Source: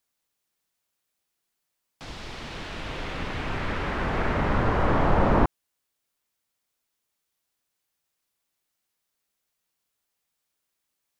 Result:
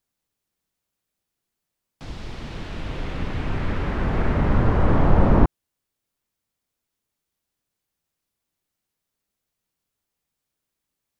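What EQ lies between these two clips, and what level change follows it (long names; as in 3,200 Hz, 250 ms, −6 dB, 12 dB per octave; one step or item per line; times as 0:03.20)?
low-shelf EQ 390 Hz +10.5 dB
−3.0 dB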